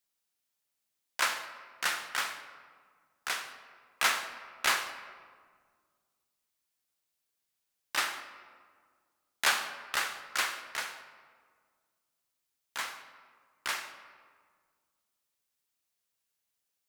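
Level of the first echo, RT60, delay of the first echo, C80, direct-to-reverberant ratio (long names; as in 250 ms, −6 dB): no echo audible, 1.8 s, no echo audible, 10.5 dB, 8.5 dB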